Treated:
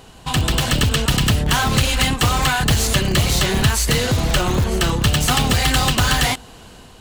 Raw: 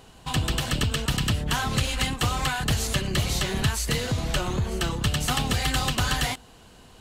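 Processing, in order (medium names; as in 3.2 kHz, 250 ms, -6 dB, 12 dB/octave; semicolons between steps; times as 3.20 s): level rider gain up to 3 dB; in parallel at -11.5 dB: integer overflow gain 18 dB; on the sum: trim +4.5 dB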